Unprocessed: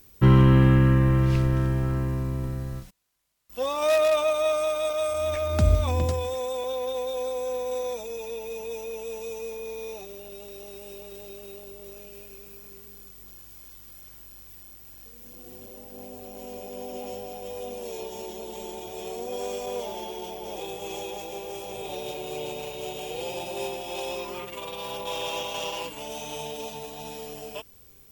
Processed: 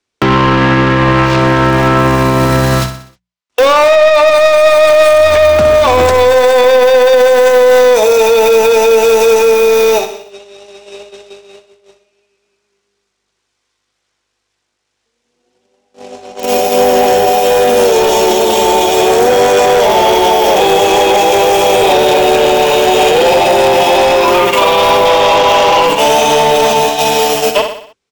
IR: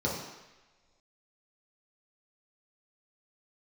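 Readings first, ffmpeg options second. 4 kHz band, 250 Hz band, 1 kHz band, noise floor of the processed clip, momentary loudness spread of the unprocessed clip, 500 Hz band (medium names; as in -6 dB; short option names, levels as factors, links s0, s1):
+22.0 dB, +13.5 dB, +25.5 dB, -70 dBFS, 21 LU, +22.0 dB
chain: -filter_complex "[0:a]agate=range=0.00355:threshold=0.0141:ratio=16:detection=peak,bandreject=f=60:t=h:w=6,bandreject=f=120:t=h:w=6,bandreject=f=180:t=h:w=6,acrossover=split=200|1500[s0][s1][s2];[s0]acompressor=threshold=0.02:ratio=4[s3];[s1]acompressor=threshold=0.0355:ratio=4[s4];[s2]acompressor=threshold=0.00398:ratio=4[s5];[s3][s4][s5]amix=inputs=3:normalize=0,asplit=2[s6][s7];[s7]highpass=f=720:p=1,volume=20,asoftclip=type=tanh:threshold=0.188[s8];[s6][s8]amix=inputs=2:normalize=0,lowpass=f=7700:p=1,volume=0.501,acrossover=split=100|7800[s9][s10][s11];[s11]aeval=exprs='val(0)*gte(abs(val(0)),0.01)':c=same[s12];[s9][s10][s12]amix=inputs=3:normalize=0,aecho=1:1:62|124|186|248|310:0.266|0.133|0.0665|0.0333|0.0166,alimiter=level_in=11.9:limit=0.891:release=50:level=0:latency=1,volume=0.891"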